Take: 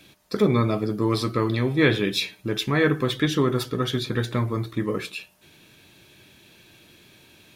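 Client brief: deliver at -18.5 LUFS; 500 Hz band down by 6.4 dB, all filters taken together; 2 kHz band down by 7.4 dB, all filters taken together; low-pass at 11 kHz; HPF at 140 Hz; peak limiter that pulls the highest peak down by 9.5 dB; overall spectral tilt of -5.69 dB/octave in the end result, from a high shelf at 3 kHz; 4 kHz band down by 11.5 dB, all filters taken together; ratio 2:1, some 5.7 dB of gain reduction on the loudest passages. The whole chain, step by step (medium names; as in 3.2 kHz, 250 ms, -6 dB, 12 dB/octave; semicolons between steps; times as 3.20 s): high-pass 140 Hz; low-pass 11 kHz; peaking EQ 500 Hz -8 dB; peaking EQ 2 kHz -5 dB; treble shelf 3 kHz -5.5 dB; peaking EQ 4 kHz -8 dB; compression 2:1, threshold -30 dBFS; trim +18.5 dB; peak limiter -8 dBFS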